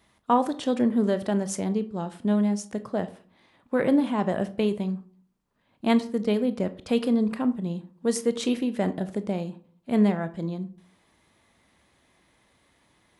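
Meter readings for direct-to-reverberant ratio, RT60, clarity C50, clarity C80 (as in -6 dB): 11.0 dB, 0.45 s, 16.0 dB, 20.5 dB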